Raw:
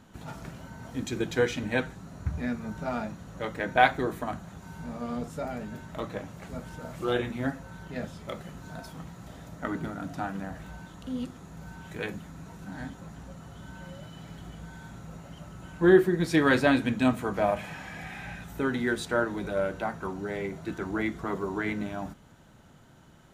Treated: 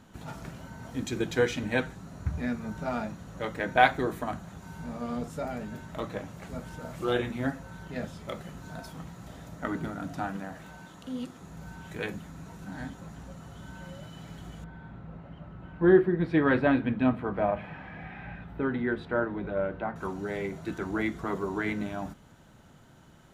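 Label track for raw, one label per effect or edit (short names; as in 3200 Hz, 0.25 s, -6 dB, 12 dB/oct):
10.370000	11.410000	HPF 200 Hz 6 dB/oct
14.640000	19.960000	air absorption 450 m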